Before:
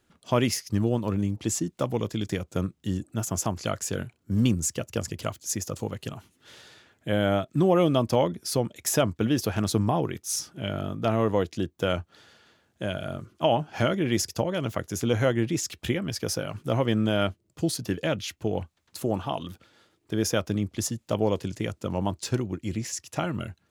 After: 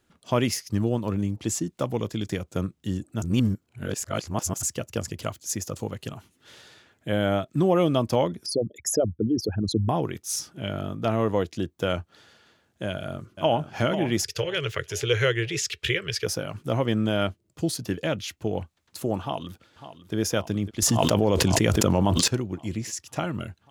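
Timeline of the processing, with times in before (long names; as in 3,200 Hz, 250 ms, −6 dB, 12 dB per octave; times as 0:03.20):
0:03.22–0:04.63: reverse
0:08.46–0:09.89: spectral envelope exaggerated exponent 3
0:12.88–0:13.74: delay throw 490 ms, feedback 40%, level −9.5 dB
0:14.24–0:16.26: drawn EQ curve 140 Hz 0 dB, 250 Hz −23 dB, 420 Hz +8 dB, 720 Hz −13 dB, 1,700 Hz +8 dB, 2,800 Hz +10 dB, 15,000 Hz −5 dB
0:19.21–0:20.15: delay throw 550 ms, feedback 80%, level −13 dB
0:20.82–0:22.28: envelope flattener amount 100%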